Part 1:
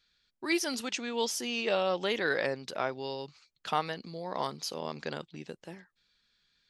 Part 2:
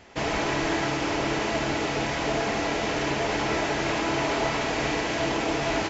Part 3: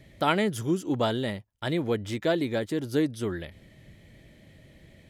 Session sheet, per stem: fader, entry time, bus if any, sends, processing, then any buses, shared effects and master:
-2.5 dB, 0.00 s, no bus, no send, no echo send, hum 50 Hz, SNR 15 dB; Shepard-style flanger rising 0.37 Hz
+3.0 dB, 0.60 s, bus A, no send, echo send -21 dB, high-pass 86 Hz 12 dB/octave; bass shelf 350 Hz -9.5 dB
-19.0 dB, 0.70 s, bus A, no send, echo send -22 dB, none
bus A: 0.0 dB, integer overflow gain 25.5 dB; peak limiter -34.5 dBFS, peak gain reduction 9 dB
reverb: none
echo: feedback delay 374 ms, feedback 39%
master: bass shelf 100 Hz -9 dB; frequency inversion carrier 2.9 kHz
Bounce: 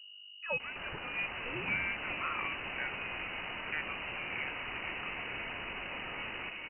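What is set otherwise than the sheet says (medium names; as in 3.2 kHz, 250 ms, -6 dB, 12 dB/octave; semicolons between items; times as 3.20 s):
stem 2: missing bass shelf 350 Hz -9.5 dB; stem 3: muted; master: missing bass shelf 100 Hz -9 dB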